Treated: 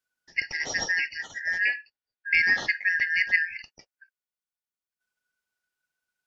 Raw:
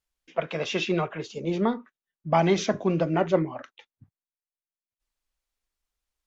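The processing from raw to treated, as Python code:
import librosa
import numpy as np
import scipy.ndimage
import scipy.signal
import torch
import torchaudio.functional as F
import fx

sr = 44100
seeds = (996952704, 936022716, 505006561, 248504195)

y = fx.band_shuffle(x, sr, order='3142')
y = fx.lowpass(y, sr, hz=5100.0, slope=24, at=(1.6, 3.6))
y = F.gain(torch.from_numpy(y), -1.0).numpy()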